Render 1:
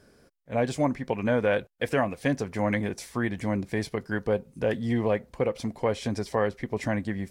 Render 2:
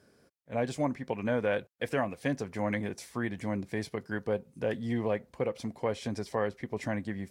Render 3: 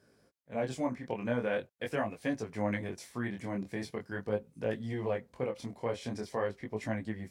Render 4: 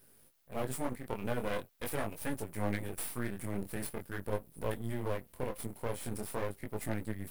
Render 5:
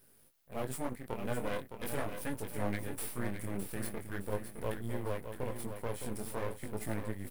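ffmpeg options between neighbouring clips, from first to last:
ffmpeg -i in.wav -af "highpass=77,volume=-5dB" out.wav
ffmpeg -i in.wav -af "flanger=delay=18:depth=7.5:speed=0.43" out.wav
ffmpeg -i in.wav -af "lowshelf=frequency=120:gain=9,aexciter=amount=14.6:drive=6.7:freq=8800,aeval=exprs='max(val(0),0)':channel_layout=same" out.wav
ffmpeg -i in.wav -af "aecho=1:1:613|1226|1839|2452:0.398|0.143|0.0516|0.0186,volume=-1.5dB" out.wav

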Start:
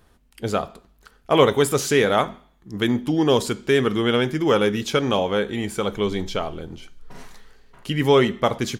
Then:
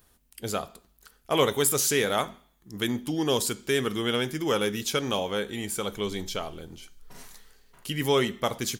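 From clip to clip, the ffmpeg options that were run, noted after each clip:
ffmpeg -i in.wav -af "aemphasis=mode=production:type=75kf,volume=-8dB" out.wav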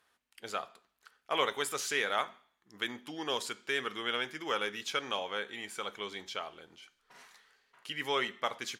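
ffmpeg -i in.wav -af "bandpass=frequency=1700:width_type=q:width=0.79:csg=0,volume=-1.5dB" out.wav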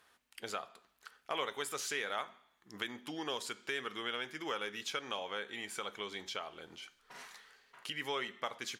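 ffmpeg -i in.wav -af "acompressor=threshold=-48dB:ratio=2,volume=5dB" out.wav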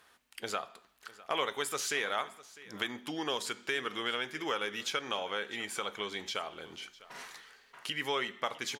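ffmpeg -i in.wav -af "aecho=1:1:653:0.106,volume=4.5dB" out.wav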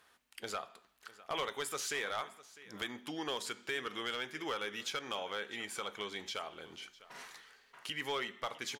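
ffmpeg -i in.wav -af "asoftclip=type=hard:threshold=-25.5dB,volume=-3.5dB" out.wav

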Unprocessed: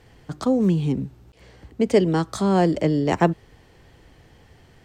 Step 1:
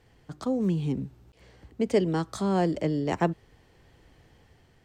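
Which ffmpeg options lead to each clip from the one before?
ffmpeg -i in.wav -af "dynaudnorm=framelen=200:gausssize=7:maxgain=3.5dB,volume=-8.5dB" out.wav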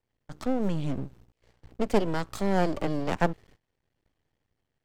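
ffmpeg -i in.wav -af "agate=range=-20dB:threshold=-52dB:ratio=16:detection=peak,aeval=exprs='max(val(0),0)':channel_layout=same,volume=3dB" out.wav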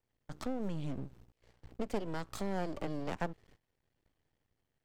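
ffmpeg -i in.wav -af "acompressor=threshold=-35dB:ratio=2,volume=-2.5dB" out.wav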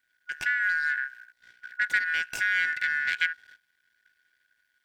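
ffmpeg -i in.wav -af "afftfilt=real='real(if(lt(b,272),68*(eq(floor(b/68),0)*3+eq(floor(b/68),1)*0+eq(floor(b/68),2)*1+eq(floor(b/68),3)*2)+mod(b,68),b),0)':imag='imag(if(lt(b,272),68*(eq(floor(b/68),0)*3+eq(floor(b/68),1)*0+eq(floor(b/68),2)*1+eq(floor(b/68),3)*2)+mod(b,68),b),0)':win_size=2048:overlap=0.75,volume=8.5dB" out.wav

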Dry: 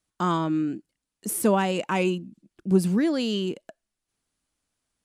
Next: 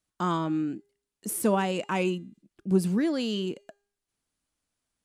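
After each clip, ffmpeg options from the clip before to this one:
ffmpeg -i in.wav -af "bandreject=frequency=404.3:width_type=h:width=4,bandreject=frequency=808.6:width_type=h:width=4,bandreject=frequency=1212.9:width_type=h:width=4,bandreject=frequency=1617.2:width_type=h:width=4,bandreject=frequency=2021.5:width_type=h:width=4,bandreject=frequency=2425.8:width_type=h:width=4,bandreject=frequency=2830.1:width_type=h:width=4,bandreject=frequency=3234.4:width_type=h:width=4,bandreject=frequency=3638.7:width_type=h:width=4,bandreject=frequency=4043:width_type=h:width=4,bandreject=frequency=4447.3:width_type=h:width=4,bandreject=frequency=4851.6:width_type=h:width=4,bandreject=frequency=5255.9:width_type=h:width=4,bandreject=frequency=5660.2:width_type=h:width=4,bandreject=frequency=6064.5:width_type=h:width=4,bandreject=frequency=6468.8:width_type=h:width=4,bandreject=frequency=6873.1:width_type=h:width=4,bandreject=frequency=7277.4:width_type=h:width=4,bandreject=frequency=7681.7:width_type=h:width=4,bandreject=frequency=8086:width_type=h:width=4,bandreject=frequency=8490.3:width_type=h:width=4,bandreject=frequency=8894.6:width_type=h:width=4,bandreject=frequency=9298.9:width_type=h:width=4,volume=-3dB" out.wav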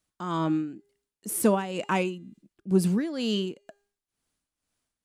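ffmpeg -i in.wav -af "tremolo=f=2.1:d=0.7,volume=3.5dB" out.wav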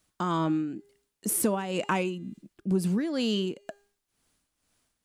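ffmpeg -i in.wav -af "acompressor=threshold=-35dB:ratio=3,volume=8dB" out.wav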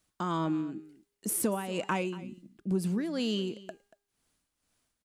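ffmpeg -i in.wav -af "aecho=1:1:234:0.119,volume=-3.5dB" out.wav

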